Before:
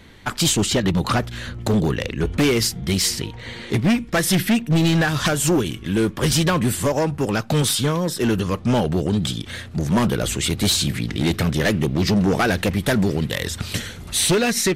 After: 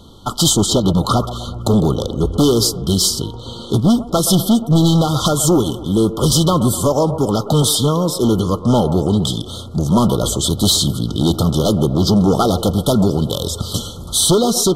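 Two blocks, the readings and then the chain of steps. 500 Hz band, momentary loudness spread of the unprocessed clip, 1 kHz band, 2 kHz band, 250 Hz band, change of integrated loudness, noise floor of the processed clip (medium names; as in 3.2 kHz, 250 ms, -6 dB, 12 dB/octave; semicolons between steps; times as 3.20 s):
+5.5 dB, 8 LU, +5.5 dB, under -20 dB, +5.0 dB, +4.5 dB, -32 dBFS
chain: FFT band-reject 1.4–3 kHz; on a send: feedback echo behind a band-pass 124 ms, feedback 53%, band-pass 650 Hz, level -11 dB; on the sum: trim +5 dB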